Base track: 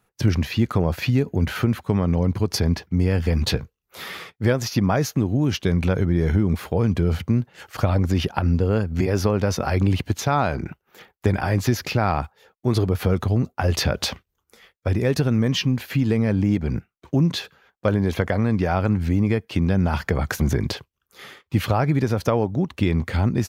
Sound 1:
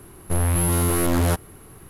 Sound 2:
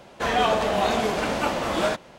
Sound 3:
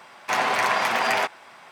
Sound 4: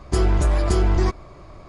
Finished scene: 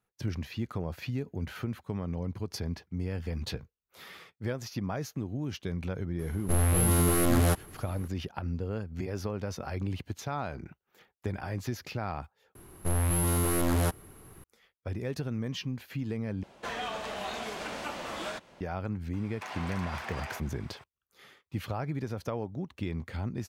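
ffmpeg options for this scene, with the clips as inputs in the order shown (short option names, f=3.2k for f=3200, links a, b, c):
-filter_complex "[1:a]asplit=2[a][b];[0:a]volume=-14dB[c];[a]bandreject=f=940:w=13[d];[2:a]acrossover=split=93|220|1100[e][f][g][h];[e]acompressor=threshold=-51dB:ratio=3[i];[f]acompressor=threshold=-46dB:ratio=3[j];[g]acompressor=threshold=-33dB:ratio=3[k];[h]acompressor=threshold=-29dB:ratio=3[l];[i][j][k][l]amix=inputs=4:normalize=0[m];[3:a]acompressor=threshold=-29dB:ratio=6:attack=3.2:release=140:knee=1:detection=peak[n];[c]asplit=3[o][p][q];[o]atrim=end=12.554[r];[b]atrim=end=1.89,asetpts=PTS-STARTPTS,volume=-6.5dB[s];[p]atrim=start=14.436:end=16.434[t];[m]atrim=end=2.18,asetpts=PTS-STARTPTS,volume=-8dB[u];[q]atrim=start=18.606[v];[d]atrim=end=1.89,asetpts=PTS-STARTPTS,volume=-4dB,afade=t=in:d=0.004:c=hsin,afade=t=out:st=1.886:d=0.004:c=hsin,adelay=6190[w];[n]atrim=end=1.71,asetpts=PTS-STARTPTS,volume=-8.5dB,afade=t=in:d=0.004:c=hsin,afade=t=out:st=1.706:d=0.004:c=hsin,adelay=19130[x];[r][s]acrossfade=d=0.004:c1=hsin:c2=hsin[y];[y][t]acrossfade=d=0.004:c1=hsin:c2=hsin[z];[z][u]acrossfade=d=0.004:c1=hsin:c2=hsin[aa];[aa][v]acrossfade=d=0.004:c1=hsin:c2=hsin[ab];[ab][w][x]amix=inputs=3:normalize=0"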